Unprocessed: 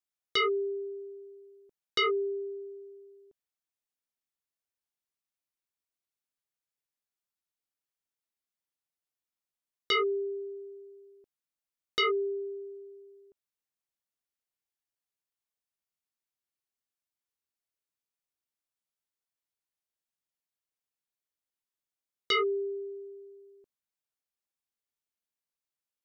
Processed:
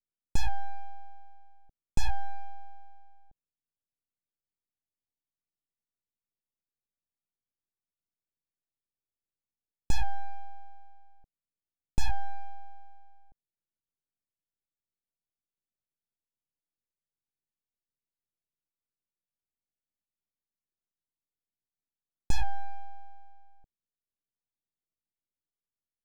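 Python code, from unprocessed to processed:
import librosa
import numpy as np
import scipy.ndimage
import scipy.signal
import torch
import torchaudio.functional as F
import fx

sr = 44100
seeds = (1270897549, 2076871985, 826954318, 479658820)

y = fx.wiener(x, sr, points=41)
y = np.abs(y)
y = fx.tilt_shelf(y, sr, db=9.0, hz=680.0)
y = y * librosa.db_to_amplitude(1.0)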